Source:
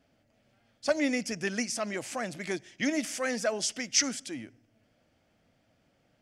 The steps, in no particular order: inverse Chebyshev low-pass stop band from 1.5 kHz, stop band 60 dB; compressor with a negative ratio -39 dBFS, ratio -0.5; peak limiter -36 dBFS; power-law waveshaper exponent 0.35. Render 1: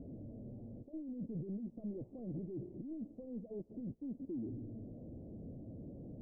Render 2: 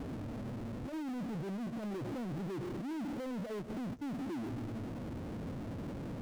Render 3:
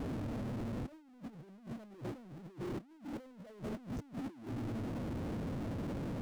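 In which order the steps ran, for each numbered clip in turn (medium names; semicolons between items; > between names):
compressor with a negative ratio > peak limiter > power-law waveshaper > inverse Chebyshev low-pass; compressor with a negative ratio > inverse Chebyshev low-pass > power-law waveshaper > peak limiter; inverse Chebyshev low-pass > power-law waveshaper > compressor with a negative ratio > peak limiter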